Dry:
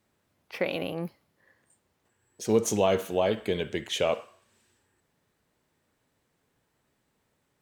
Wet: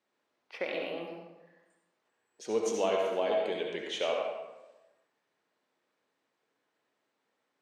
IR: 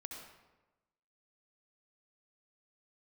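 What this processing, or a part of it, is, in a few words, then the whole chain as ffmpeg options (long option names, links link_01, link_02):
supermarket ceiling speaker: -filter_complex "[0:a]highpass=350,lowpass=5800[link_01];[1:a]atrim=start_sample=2205[link_02];[link_01][link_02]afir=irnorm=-1:irlink=0"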